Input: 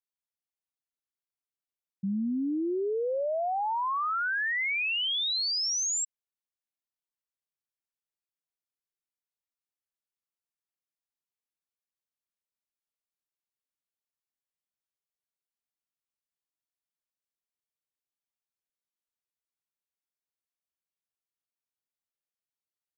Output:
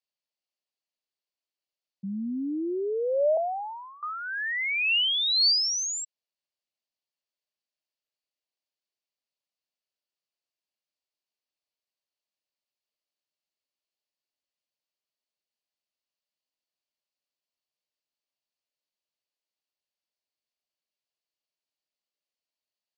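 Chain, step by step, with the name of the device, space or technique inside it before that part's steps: television speaker (speaker cabinet 200–7000 Hz, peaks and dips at 600 Hz +8 dB, 1400 Hz -7 dB, 2800 Hz +6 dB, 4500 Hz +9 dB); 3.37–4.03 inverse Chebyshev low-pass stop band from 1500 Hz, stop band 40 dB

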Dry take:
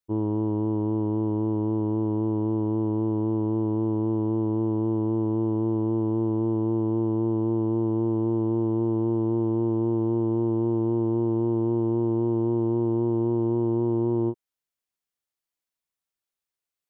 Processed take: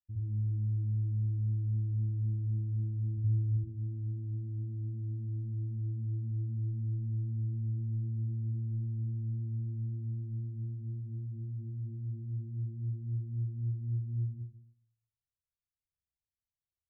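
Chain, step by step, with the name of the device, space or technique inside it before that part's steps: 3.17–3.57 comb 2 ms; club heard from the street (limiter -24 dBFS, peak gain reduction 7.5 dB; LPF 130 Hz 24 dB/oct; reverb RT60 0.65 s, pre-delay 61 ms, DRR -5.5 dB)

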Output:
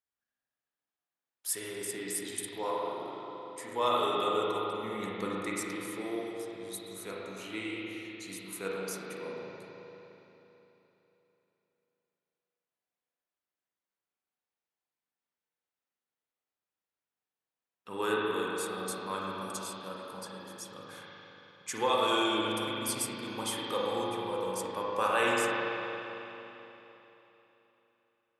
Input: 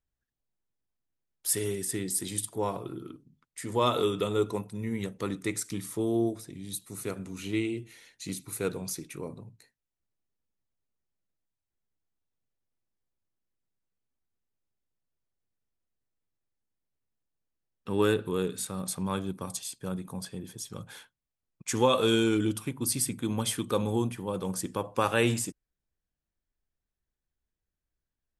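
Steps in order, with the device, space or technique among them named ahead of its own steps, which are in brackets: 4.83–5.35 low shelf 360 Hz +7.5 dB; filter by subtraction (in parallel: LPF 950 Hz 12 dB/oct + phase invert); on the sum: spring tank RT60 3.5 s, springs 37/41 ms, chirp 20 ms, DRR -5 dB; gain -5.5 dB

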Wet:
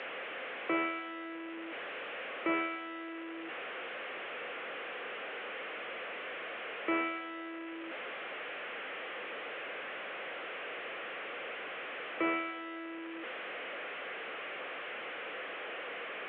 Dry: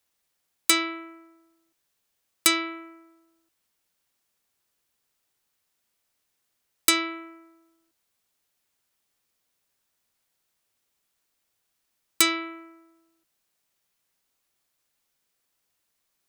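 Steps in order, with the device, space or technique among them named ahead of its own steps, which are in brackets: digital answering machine (BPF 300–3300 Hz; delta modulation 16 kbps, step -34 dBFS; speaker cabinet 350–4100 Hz, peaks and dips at 500 Hz +7 dB, 930 Hz -8 dB, 3900 Hz -7 dB)

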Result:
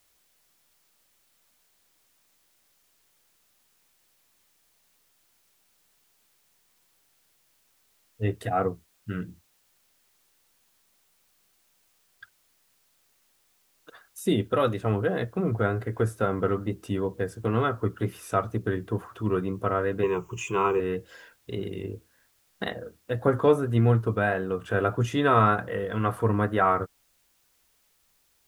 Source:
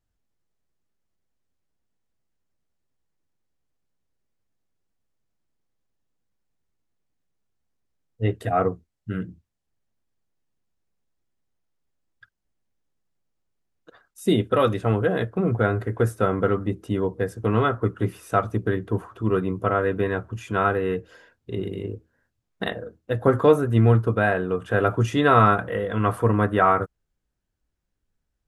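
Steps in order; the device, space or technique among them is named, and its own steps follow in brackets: noise-reduction cassette on a plain deck (mismatched tape noise reduction encoder only; wow and flutter; white noise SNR 38 dB); 20.03–20.8 ripple EQ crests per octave 0.73, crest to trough 17 dB; gain -4 dB

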